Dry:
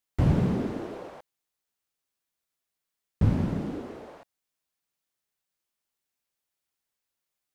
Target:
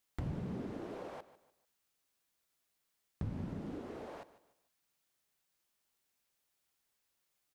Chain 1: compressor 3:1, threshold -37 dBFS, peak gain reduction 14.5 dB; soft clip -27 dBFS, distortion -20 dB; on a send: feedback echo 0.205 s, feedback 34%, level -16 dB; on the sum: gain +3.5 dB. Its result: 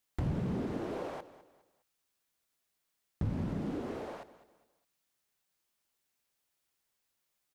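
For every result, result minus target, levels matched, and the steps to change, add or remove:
echo 57 ms late; compressor: peak gain reduction -7 dB
change: feedback echo 0.148 s, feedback 34%, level -16 dB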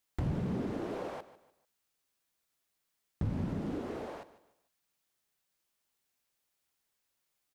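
compressor: peak gain reduction -7 dB
change: compressor 3:1, threshold -47.5 dBFS, peak gain reduction 21.5 dB

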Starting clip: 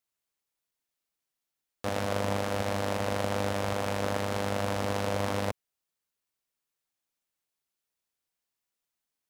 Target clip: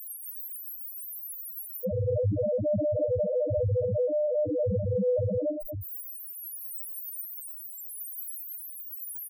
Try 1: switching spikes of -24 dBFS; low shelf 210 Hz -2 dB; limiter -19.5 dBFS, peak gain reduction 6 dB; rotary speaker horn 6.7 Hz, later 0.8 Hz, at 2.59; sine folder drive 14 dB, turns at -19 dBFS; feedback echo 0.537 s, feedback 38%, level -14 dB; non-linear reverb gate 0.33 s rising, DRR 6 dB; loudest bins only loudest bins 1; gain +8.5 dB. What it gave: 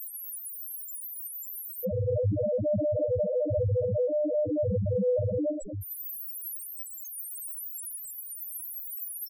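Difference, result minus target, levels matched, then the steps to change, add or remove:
switching spikes: distortion +6 dB
change: switching spikes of -30.5 dBFS

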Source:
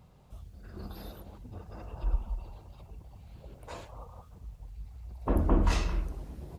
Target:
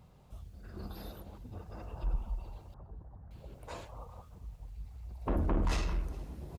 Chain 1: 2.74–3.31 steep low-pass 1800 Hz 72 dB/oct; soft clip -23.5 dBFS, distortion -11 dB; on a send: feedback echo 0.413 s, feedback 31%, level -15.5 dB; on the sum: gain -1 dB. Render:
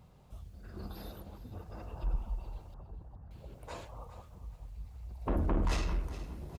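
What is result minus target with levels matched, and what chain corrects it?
echo-to-direct +10 dB
2.74–3.31 steep low-pass 1800 Hz 72 dB/oct; soft clip -23.5 dBFS, distortion -11 dB; on a send: feedback echo 0.413 s, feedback 31%, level -25.5 dB; on the sum: gain -1 dB

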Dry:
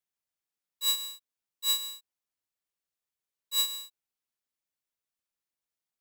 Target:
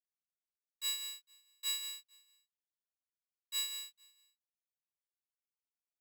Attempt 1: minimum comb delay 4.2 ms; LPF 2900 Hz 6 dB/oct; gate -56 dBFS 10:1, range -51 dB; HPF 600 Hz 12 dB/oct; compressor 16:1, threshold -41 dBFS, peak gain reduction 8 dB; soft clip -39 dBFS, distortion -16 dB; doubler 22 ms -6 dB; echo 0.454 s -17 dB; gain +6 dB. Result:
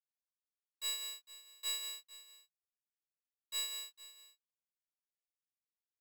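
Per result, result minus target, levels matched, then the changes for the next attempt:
500 Hz band +10.5 dB; soft clip: distortion +12 dB; echo-to-direct +11.5 dB
change: HPF 1300 Hz 12 dB/oct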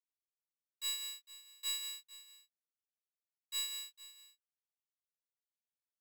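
echo-to-direct +11.5 dB; soft clip: distortion +11 dB
change: echo 0.454 s -28.5 dB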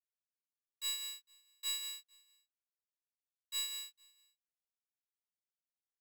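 soft clip: distortion +11 dB
change: soft clip -32 dBFS, distortion -28 dB

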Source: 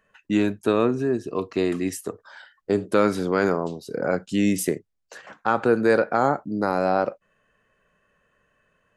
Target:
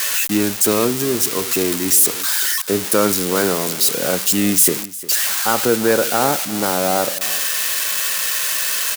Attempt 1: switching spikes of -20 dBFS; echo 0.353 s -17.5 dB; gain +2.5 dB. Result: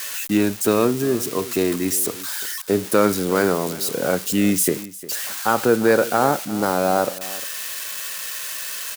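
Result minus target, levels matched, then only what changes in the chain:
switching spikes: distortion -9 dB
change: switching spikes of -10.5 dBFS

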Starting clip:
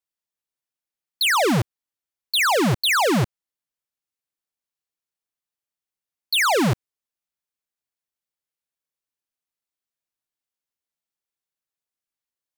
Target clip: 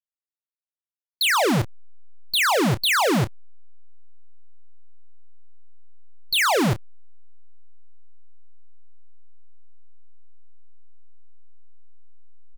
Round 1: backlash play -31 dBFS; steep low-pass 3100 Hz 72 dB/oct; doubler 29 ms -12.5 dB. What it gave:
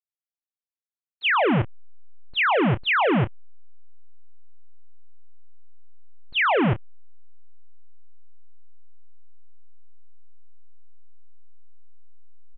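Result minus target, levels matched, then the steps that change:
4000 Hz band -4.5 dB
remove: steep low-pass 3100 Hz 72 dB/oct

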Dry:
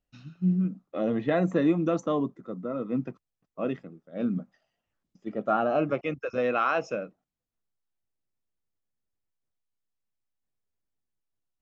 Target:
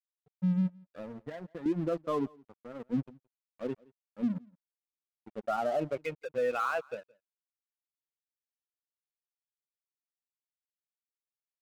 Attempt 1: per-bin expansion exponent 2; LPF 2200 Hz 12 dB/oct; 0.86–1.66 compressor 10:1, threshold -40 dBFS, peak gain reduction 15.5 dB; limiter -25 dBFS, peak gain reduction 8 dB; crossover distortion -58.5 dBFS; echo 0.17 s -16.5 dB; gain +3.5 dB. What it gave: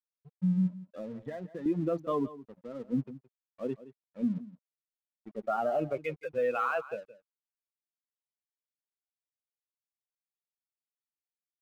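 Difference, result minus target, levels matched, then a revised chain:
echo-to-direct +9.5 dB; crossover distortion: distortion -9 dB
per-bin expansion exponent 2; LPF 2200 Hz 12 dB/oct; 0.86–1.66 compressor 10:1, threshold -40 dBFS, peak gain reduction 15.5 dB; limiter -25 dBFS, peak gain reduction 8 dB; crossover distortion -48.5 dBFS; echo 0.17 s -26 dB; gain +3.5 dB

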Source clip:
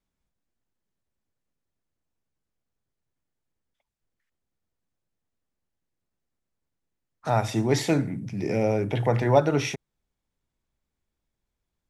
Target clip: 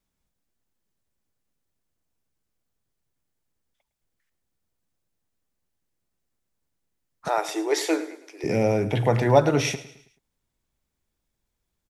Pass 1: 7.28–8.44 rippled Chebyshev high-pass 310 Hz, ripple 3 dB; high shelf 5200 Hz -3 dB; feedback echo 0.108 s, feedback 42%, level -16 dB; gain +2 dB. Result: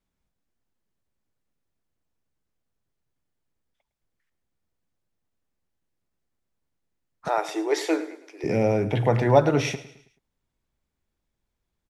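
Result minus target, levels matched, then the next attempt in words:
8000 Hz band -5.0 dB
7.28–8.44 rippled Chebyshev high-pass 310 Hz, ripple 3 dB; high shelf 5200 Hz +5.5 dB; feedback echo 0.108 s, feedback 42%, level -16 dB; gain +2 dB

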